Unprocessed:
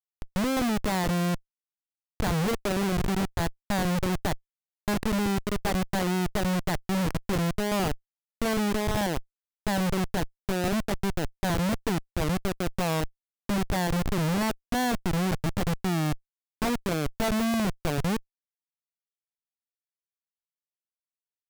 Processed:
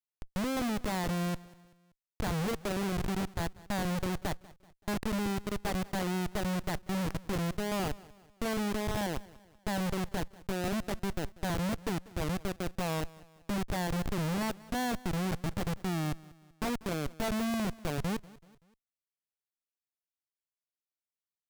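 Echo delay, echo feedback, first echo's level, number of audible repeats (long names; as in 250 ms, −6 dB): 191 ms, 45%, −21.0 dB, 3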